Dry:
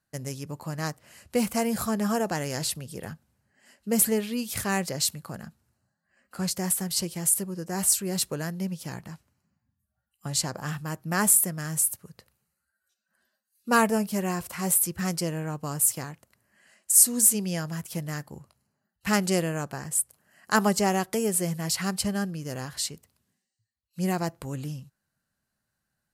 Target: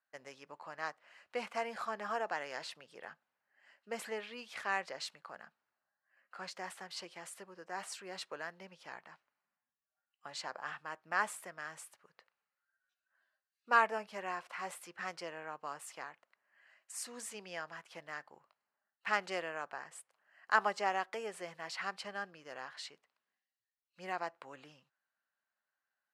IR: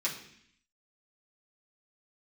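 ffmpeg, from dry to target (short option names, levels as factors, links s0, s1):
-af "highpass=800,lowpass=2500,volume=0.708"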